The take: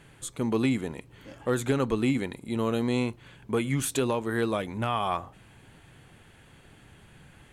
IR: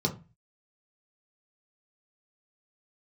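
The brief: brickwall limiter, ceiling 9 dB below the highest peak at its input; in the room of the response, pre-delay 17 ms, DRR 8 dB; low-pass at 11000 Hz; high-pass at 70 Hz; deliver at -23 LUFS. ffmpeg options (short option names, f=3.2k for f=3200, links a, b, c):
-filter_complex "[0:a]highpass=70,lowpass=11k,alimiter=limit=-22dB:level=0:latency=1,asplit=2[a][b];[1:a]atrim=start_sample=2205,adelay=17[c];[b][c]afir=irnorm=-1:irlink=0,volume=-15.5dB[d];[a][d]amix=inputs=2:normalize=0,volume=7dB"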